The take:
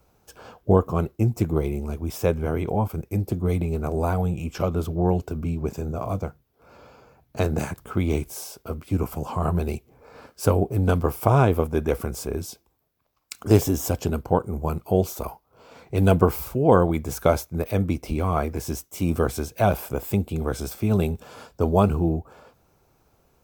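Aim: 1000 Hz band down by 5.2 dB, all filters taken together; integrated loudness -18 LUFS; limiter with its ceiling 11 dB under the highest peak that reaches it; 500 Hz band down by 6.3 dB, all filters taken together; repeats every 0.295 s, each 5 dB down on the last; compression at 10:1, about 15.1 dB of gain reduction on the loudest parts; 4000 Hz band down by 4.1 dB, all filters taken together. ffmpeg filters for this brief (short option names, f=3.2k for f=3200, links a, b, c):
-af "equalizer=f=500:t=o:g=-7,equalizer=f=1k:t=o:g=-4,equalizer=f=4k:t=o:g=-5.5,acompressor=threshold=-29dB:ratio=10,alimiter=level_in=4dB:limit=-24dB:level=0:latency=1,volume=-4dB,aecho=1:1:295|590|885|1180|1475|1770|2065:0.562|0.315|0.176|0.0988|0.0553|0.031|0.0173,volume=19.5dB"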